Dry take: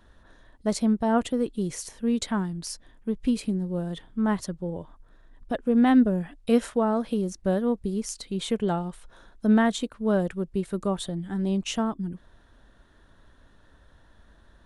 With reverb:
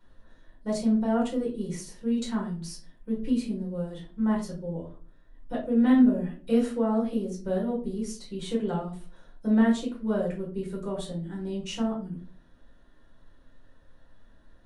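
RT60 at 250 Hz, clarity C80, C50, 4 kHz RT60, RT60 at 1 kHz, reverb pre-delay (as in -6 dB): 0.60 s, 13.0 dB, 8.0 dB, 0.25 s, 0.35 s, 6 ms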